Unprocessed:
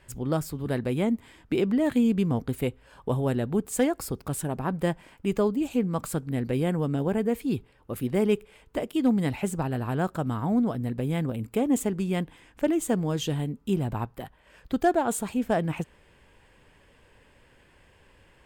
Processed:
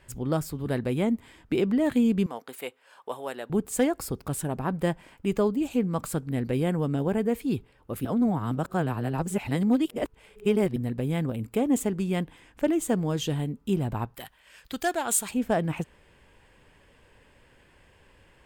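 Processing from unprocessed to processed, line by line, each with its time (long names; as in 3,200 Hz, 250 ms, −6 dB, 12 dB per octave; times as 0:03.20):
0:02.26–0:03.50: high-pass filter 650 Hz
0:08.05–0:10.76: reverse
0:14.15–0:15.31: tilt shelving filter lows −9 dB, about 1,300 Hz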